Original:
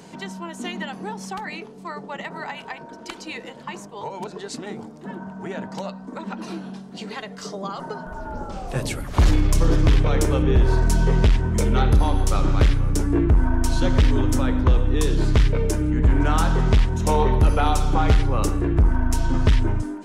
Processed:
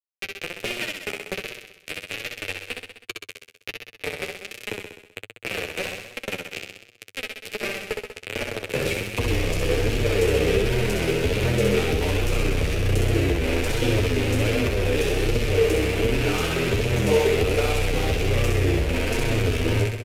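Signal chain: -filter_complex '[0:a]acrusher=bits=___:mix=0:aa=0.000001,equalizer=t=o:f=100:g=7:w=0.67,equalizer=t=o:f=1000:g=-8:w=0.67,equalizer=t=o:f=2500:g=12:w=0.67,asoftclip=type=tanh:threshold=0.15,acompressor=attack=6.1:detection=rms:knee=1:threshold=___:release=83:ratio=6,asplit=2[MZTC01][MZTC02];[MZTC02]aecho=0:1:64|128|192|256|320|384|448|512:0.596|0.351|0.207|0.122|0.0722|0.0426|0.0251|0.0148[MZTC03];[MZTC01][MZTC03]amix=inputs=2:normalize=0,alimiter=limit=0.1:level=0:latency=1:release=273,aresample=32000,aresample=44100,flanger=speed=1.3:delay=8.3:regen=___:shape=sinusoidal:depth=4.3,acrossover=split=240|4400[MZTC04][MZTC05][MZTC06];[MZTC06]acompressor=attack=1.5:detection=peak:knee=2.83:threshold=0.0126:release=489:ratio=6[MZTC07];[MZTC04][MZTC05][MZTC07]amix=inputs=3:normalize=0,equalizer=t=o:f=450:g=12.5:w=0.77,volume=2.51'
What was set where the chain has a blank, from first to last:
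3, 0.0501, 14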